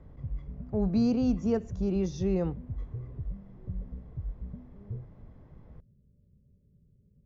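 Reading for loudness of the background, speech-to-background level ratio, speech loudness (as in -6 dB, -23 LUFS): -41.5 LUFS, 12.5 dB, -29.0 LUFS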